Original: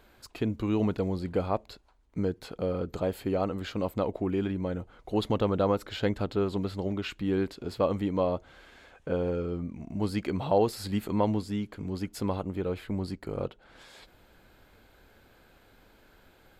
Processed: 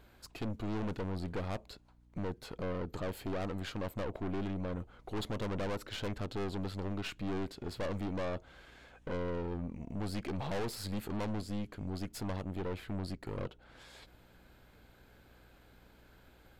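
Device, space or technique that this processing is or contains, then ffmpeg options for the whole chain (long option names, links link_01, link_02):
valve amplifier with mains hum: -af "aeval=exprs='(tanh(50.1*val(0)+0.65)-tanh(0.65))/50.1':channel_layout=same,aeval=exprs='val(0)+0.000708*(sin(2*PI*60*n/s)+sin(2*PI*2*60*n/s)/2+sin(2*PI*3*60*n/s)/3+sin(2*PI*4*60*n/s)/4+sin(2*PI*5*60*n/s)/5)':channel_layout=same"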